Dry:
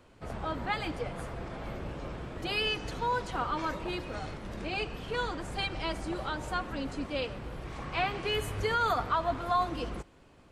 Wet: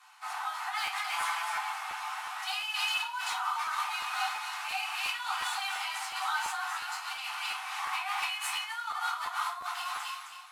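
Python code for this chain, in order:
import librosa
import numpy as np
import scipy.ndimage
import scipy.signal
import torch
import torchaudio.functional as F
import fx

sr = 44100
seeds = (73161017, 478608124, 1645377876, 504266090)

p1 = fx.cvsd(x, sr, bps=64000)
p2 = np.sign(p1) * np.maximum(np.abs(p1) - 10.0 ** (-49.0 / 20.0), 0.0)
p3 = p1 + F.gain(torch.from_numpy(p2), -6.5).numpy()
p4 = fx.echo_wet_highpass(p3, sr, ms=262, feedback_pct=36, hz=1600.0, wet_db=-6.0)
p5 = fx.over_compress(p4, sr, threshold_db=-34.0, ratio=-1.0)
p6 = np.clip(p5, -10.0 ** (-25.5 / 20.0), 10.0 ** (-25.5 / 20.0))
p7 = scipy.signal.sosfilt(scipy.signal.butter(16, 760.0, 'highpass', fs=sr, output='sos'), p6)
p8 = fx.comb(p7, sr, ms=6.0, depth=0.98, at=(1.11, 1.58))
p9 = fx.room_shoebox(p8, sr, seeds[0], volume_m3=270.0, walls='furnished', distance_m=3.5)
p10 = fx.buffer_crackle(p9, sr, first_s=0.85, period_s=0.35, block=512, kind='repeat')
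y = F.gain(torch.from_numpy(p10), -2.0).numpy()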